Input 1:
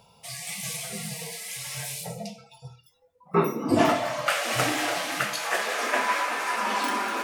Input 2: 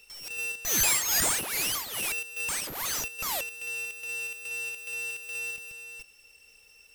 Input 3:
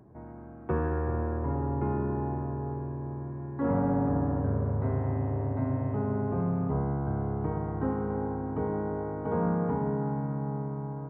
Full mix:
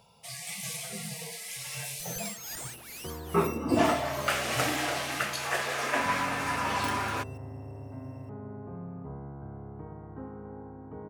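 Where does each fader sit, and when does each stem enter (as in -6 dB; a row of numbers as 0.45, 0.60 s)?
-3.5, -14.5, -12.0 dB; 0.00, 1.35, 2.35 s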